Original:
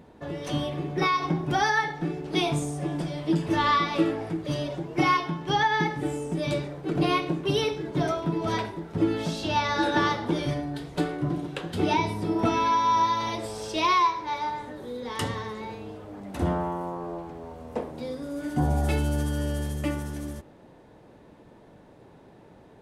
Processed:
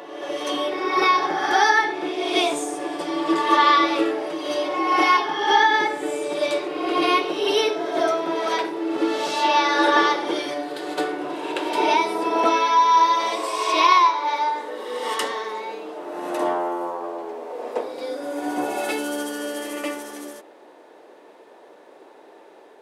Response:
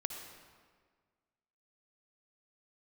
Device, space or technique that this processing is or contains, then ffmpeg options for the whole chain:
ghost voice: -filter_complex "[0:a]areverse[link_01];[1:a]atrim=start_sample=2205[link_02];[link_01][link_02]afir=irnorm=-1:irlink=0,areverse,highpass=frequency=360:width=0.5412,highpass=frequency=360:width=1.3066,volume=7dB"

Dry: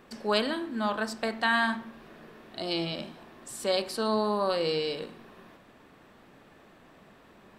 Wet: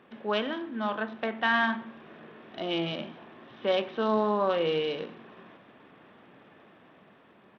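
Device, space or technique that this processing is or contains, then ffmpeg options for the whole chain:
Bluetooth headset: -af "highpass=120,dynaudnorm=framelen=550:gausssize=5:maxgain=3.5dB,aresample=8000,aresample=44100,volume=-2dB" -ar 32000 -c:a sbc -b:a 64k

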